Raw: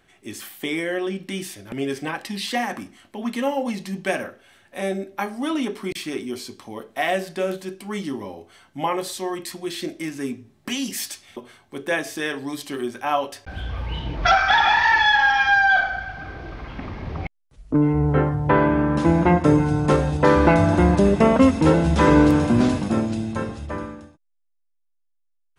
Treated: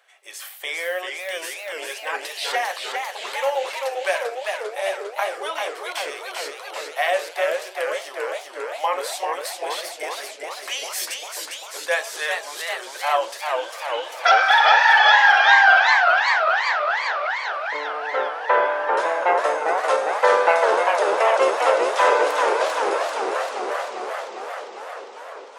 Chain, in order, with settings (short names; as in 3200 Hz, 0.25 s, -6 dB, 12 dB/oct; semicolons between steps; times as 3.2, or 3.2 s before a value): elliptic high-pass 520 Hz, stop band 60 dB; warbling echo 0.397 s, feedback 73%, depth 184 cents, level -4.5 dB; gain +2 dB